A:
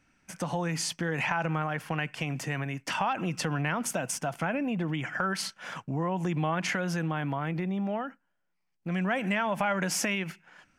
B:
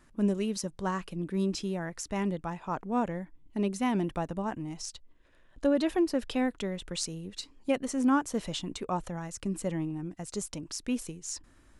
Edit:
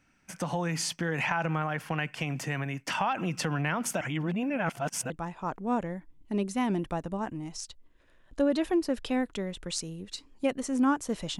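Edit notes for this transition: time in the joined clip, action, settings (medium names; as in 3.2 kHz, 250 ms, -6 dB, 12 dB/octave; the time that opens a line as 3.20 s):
A
4.01–5.10 s: reverse
5.10 s: go over to B from 2.35 s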